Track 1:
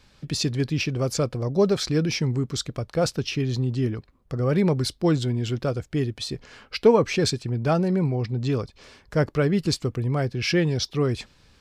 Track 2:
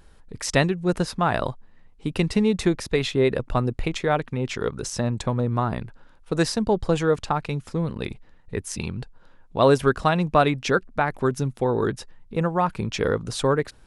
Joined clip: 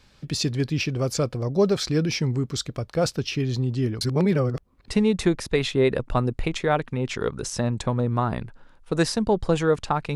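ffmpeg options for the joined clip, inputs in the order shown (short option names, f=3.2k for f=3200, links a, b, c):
-filter_complex "[0:a]apad=whole_dur=10.15,atrim=end=10.15,asplit=2[a][b];[a]atrim=end=4.012[c];[b]atrim=start=4.008:end=4.882,asetpts=PTS-STARTPTS,areverse[d];[1:a]atrim=start=2.278:end=7.55[e];[c][d]acrossfade=d=0.004:c1=hsin:c2=hsin[f];[f][e]acrossfade=d=0.004:c1=hsin:c2=hsin"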